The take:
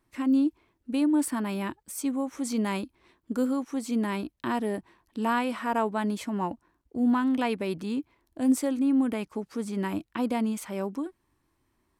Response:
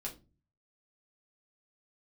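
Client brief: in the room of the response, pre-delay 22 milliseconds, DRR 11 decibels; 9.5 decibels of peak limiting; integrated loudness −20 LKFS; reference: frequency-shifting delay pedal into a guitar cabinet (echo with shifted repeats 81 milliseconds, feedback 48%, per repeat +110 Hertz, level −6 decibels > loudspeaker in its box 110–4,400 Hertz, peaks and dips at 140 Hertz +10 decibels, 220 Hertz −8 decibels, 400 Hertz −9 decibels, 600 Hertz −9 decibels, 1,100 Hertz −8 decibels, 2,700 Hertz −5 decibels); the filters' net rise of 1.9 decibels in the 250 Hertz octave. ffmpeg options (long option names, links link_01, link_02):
-filter_complex "[0:a]equalizer=frequency=250:width_type=o:gain=6.5,alimiter=limit=-17.5dB:level=0:latency=1,asplit=2[link_01][link_02];[1:a]atrim=start_sample=2205,adelay=22[link_03];[link_02][link_03]afir=irnorm=-1:irlink=0,volume=-10dB[link_04];[link_01][link_04]amix=inputs=2:normalize=0,asplit=7[link_05][link_06][link_07][link_08][link_09][link_10][link_11];[link_06]adelay=81,afreqshift=110,volume=-6dB[link_12];[link_07]adelay=162,afreqshift=220,volume=-12.4dB[link_13];[link_08]adelay=243,afreqshift=330,volume=-18.8dB[link_14];[link_09]adelay=324,afreqshift=440,volume=-25.1dB[link_15];[link_10]adelay=405,afreqshift=550,volume=-31.5dB[link_16];[link_11]adelay=486,afreqshift=660,volume=-37.9dB[link_17];[link_05][link_12][link_13][link_14][link_15][link_16][link_17]amix=inputs=7:normalize=0,highpass=110,equalizer=frequency=140:width_type=q:width=4:gain=10,equalizer=frequency=220:width_type=q:width=4:gain=-8,equalizer=frequency=400:width_type=q:width=4:gain=-9,equalizer=frequency=600:width_type=q:width=4:gain=-9,equalizer=frequency=1100:width_type=q:width=4:gain=-8,equalizer=frequency=2700:width_type=q:width=4:gain=-5,lowpass=frequency=4400:width=0.5412,lowpass=frequency=4400:width=1.3066,volume=9.5dB"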